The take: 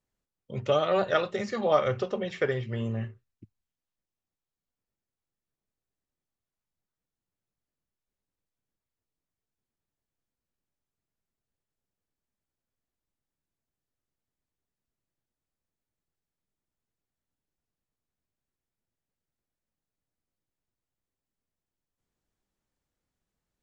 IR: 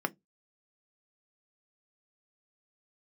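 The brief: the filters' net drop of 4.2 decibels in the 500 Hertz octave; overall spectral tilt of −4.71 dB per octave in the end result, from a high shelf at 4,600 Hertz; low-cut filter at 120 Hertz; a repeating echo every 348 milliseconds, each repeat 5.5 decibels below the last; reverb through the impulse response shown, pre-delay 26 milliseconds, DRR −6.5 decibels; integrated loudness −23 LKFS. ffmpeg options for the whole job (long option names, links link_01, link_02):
-filter_complex "[0:a]highpass=120,equalizer=frequency=500:width_type=o:gain=-5,highshelf=frequency=4600:gain=-8,aecho=1:1:348|696|1044|1392|1740|2088|2436:0.531|0.281|0.149|0.079|0.0419|0.0222|0.0118,asplit=2[link_01][link_02];[1:a]atrim=start_sample=2205,adelay=26[link_03];[link_02][link_03]afir=irnorm=-1:irlink=0,volume=0dB[link_04];[link_01][link_04]amix=inputs=2:normalize=0,volume=-0.5dB"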